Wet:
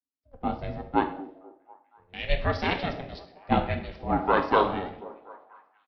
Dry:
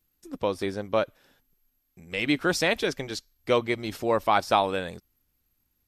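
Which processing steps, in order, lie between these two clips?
downsampling to 11,025 Hz
convolution reverb, pre-delay 3 ms, DRR 4 dB
ring modulation 270 Hz
high-shelf EQ 2,900 Hz −10 dB
echo through a band-pass that steps 244 ms, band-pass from 270 Hz, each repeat 0.7 octaves, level −7 dB
multiband upward and downward expander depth 70%

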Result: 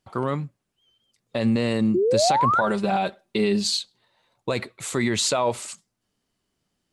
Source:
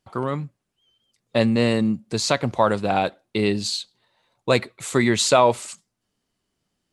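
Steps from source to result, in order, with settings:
0:02.61–0:03.79: comb filter 5.1 ms, depth 80%
brickwall limiter −13 dBFS, peak gain reduction 9.5 dB
0:01.94–0:02.61: sound drawn into the spectrogram rise 340–1,500 Hz −20 dBFS

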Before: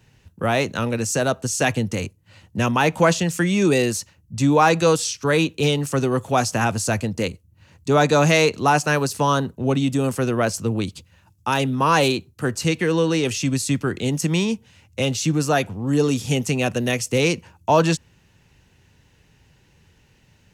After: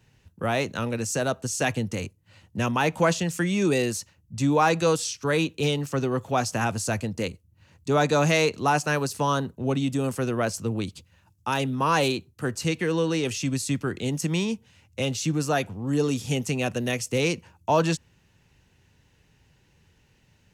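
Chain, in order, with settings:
0:05.82–0:06.46: parametric band 9,400 Hz −9 dB 0.68 octaves
level −5 dB

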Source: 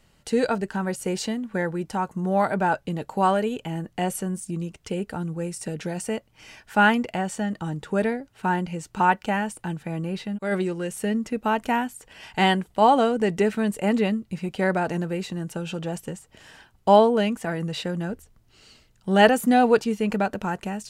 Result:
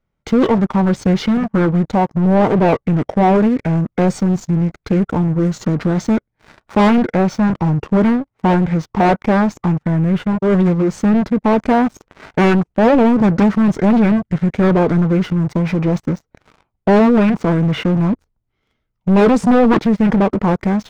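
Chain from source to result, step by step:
leveller curve on the samples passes 5
formants moved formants −5 semitones
low-pass filter 1,100 Hz 6 dB per octave
highs frequency-modulated by the lows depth 0.3 ms
level −2.5 dB

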